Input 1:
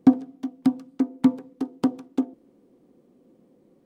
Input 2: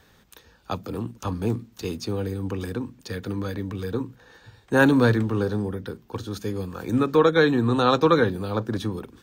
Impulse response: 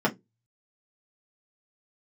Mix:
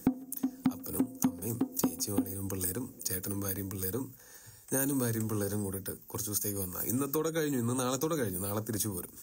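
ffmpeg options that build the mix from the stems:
-filter_complex "[0:a]lowpass=3100,lowshelf=frequency=210:gain=7,volume=0dB[link_01];[1:a]acrossover=split=470|3000[link_02][link_03][link_04];[link_03]acompressor=threshold=-28dB:ratio=2.5[link_05];[link_02][link_05][link_04]amix=inputs=3:normalize=0,aexciter=amount=10.9:drive=8.6:freq=5900,volume=-7.5dB[link_06];[link_01][link_06]amix=inputs=2:normalize=0,acompressor=threshold=-27dB:ratio=6"

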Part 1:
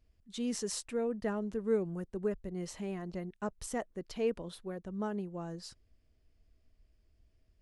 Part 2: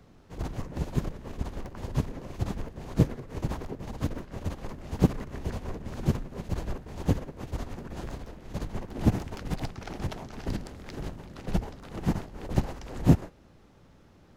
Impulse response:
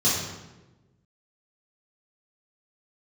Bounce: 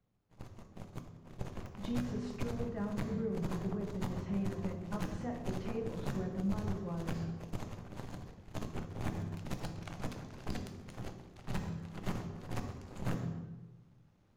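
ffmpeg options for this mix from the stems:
-filter_complex "[0:a]lowpass=2000,acompressor=threshold=-43dB:ratio=3,adelay=1500,volume=2dB,asplit=2[link_01][link_02];[link_02]volume=-16dB[link_03];[1:a]alimiter=limit=-15dB:level=0:latency=1:release=455,aeval=exprs='0.168*(cos(1*acos(clip(val(0)/0.168,-1,1)))-cos(1*PI/2))+0.0668*(cos(6*acos(clip(val(0)/0.168,-1,1)))-cos(6*PI/2))+0.0376*(cos(7*acos(clip(val(0)/0.168,-1,1)))-cos(7*PI/2))':channel_layout=same,volume=-9.5dB,afade=type=in:start_time=1.1:duration=0.4:silence=0.298538,asplit=2[link_04][link_05];[link_05]volume=-21dB[link_06];[2:a]atrim=start_sample=2205[link_07];[link_03][link_06]amix=inputs=2:normalize=0[link_08];[link_08][link_07]afir=irnorm=-1:irlink=0[link_09];[link_01][link_04][link_09]amix=inputs=3:normalize=0,alimiter=level_in=0.5dB:limit=-24dB:level=0:latency=1:release=93,volume=-0.5dB"

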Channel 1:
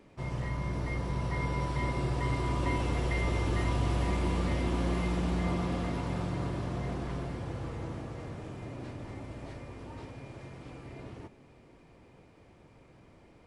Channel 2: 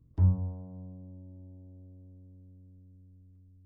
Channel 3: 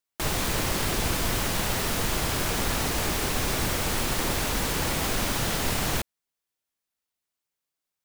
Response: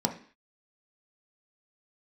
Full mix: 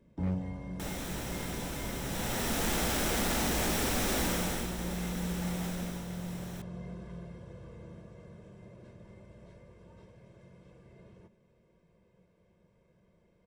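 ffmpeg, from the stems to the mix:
-filter_complex "[0:a]equalizer=frequency=190:width_type=o:width=0.92:gain=12.5,aecho=1:1:1.9:0.94,volume=-16.5dB,asplit=2[link_01][link_02];[link_02]volume=-20dB[link_03];[1:a]volume=-7dB,asplit=2[link_04][link_05];[link_05]volume=-7.5dB[link_06];[2:a]adelay=600,volume=-4dB,afade=type=in:start_time=2.02:duration=0.71:silence=0.298538,afade=type=out:start_time=4.2:duration=0.52:silence=0.266073,afade=type=out:start_time=5.67:duration=0.39:silence=0.421697,asplit=2[link_07][link_08];[link_08]volume=-15.5dB[link_09];[3:a]atrim=start_sample=2205[link_10];[link_03][link_06][link_09]amix=inputs=3:normalize=0[link_11];[link_11][link_10]afir=irnorm=-1:irlink=0[link_12];[link_01][link_04][link_07][link_12]amix=inputs=4:normalize=0,aeval=exprs='0.0596*(abs(mod(val(0)/0.0596+3,4)-2)-1)':channel_layout=same"

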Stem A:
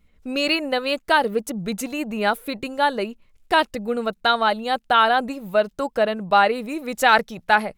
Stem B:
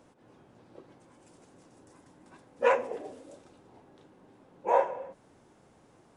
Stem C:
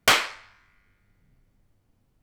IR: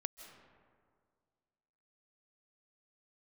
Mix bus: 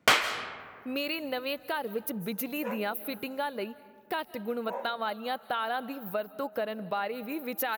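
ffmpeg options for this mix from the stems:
-filter_complex "[0:a]highshelf=frequency=4800:gain=6,alimiter=limit=-11.5dB:level=0:latency=1:release=314,aexciter=amount=13.6:drive=5.6:freq=11000,adelay=600,volume=-8dB,asplit=2[link_01][link_02];[link_02]volume=-9dB[link_03];[1:a]volume=-13.5dB[link_04];[2:a]volume=2.5dB,asplit=2[link_05][link_06];[link_06]volume=-5.5dB[link_07];[link_01][link_05]amix=inputs=2:normalize=0,highpass=120,lowpass=4400,acompressor=threshold=-31dB:ratio=6,volume=0dB[link_08];[3:a]atrim=start_sample=2205[link_09];[link_03][link_07]amix=inputs=2:normalize=0[link_10];[link_10][link_09]afir=irnorm=-1:irlink=0[link_11];[link_04][link_08][link_11]amix=inputs=3:normalize=0,highpass=52"

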